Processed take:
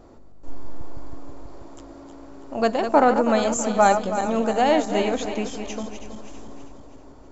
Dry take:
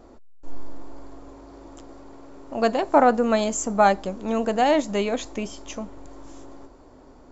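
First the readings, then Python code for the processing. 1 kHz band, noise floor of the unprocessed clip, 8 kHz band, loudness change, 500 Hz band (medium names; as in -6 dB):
+1.0 dB, -49 dBFS, no reading, +1.0 dB, +1.0 dB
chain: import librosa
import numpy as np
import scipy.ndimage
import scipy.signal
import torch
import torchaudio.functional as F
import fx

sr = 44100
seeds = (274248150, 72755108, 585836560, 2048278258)

y = fx.reverse_delay_fb(x, sr, ms=162, feedback_pct=67, wet_db=-8.0)
y = fx.add_hum(y, sr, base_hz=50, snr_db=33)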